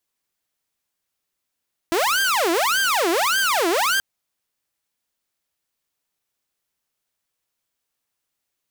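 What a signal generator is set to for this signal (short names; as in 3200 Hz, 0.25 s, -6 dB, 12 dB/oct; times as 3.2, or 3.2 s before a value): siren wail 329–1590 Hz 1.7/s saw -15 dBFS 2.08 s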